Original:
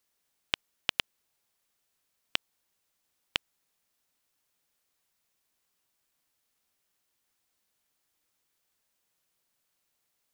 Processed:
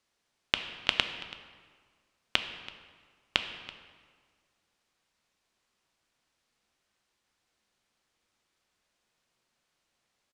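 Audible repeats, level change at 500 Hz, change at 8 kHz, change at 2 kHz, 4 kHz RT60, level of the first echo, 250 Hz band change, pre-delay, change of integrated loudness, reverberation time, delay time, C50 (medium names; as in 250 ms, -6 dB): 1, +5.0 dB, -1.0 dB, +4.5 dB, 1.1 s, -19.0 dB, +5.5 dB, 3 ms, +3.0 dB, 1.7 s, 331 ms, 8.5 dB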